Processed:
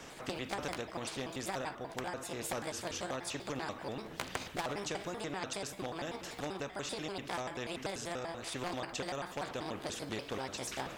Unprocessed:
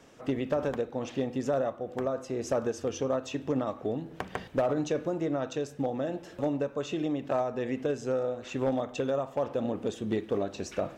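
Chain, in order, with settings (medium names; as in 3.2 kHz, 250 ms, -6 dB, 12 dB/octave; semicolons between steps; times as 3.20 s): pitch shift switched off and on +5 st, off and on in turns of 97 ms; spectrum-flattening compressor 2:1; trim +1.5 dB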